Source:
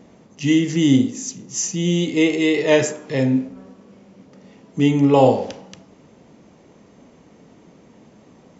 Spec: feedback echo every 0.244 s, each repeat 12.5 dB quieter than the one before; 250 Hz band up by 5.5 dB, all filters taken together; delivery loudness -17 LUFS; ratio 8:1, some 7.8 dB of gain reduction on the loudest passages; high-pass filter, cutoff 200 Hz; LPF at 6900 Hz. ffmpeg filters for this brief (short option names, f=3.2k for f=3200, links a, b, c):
-af "highpass=200,lowpass=6.9k,equalizer=f=250:t=o:g=8,acompressor=threshold=-12dB:ratio=8,aecho=1:1:244|488|732:0.237|0.0569|0.0137,volume=1.5dB"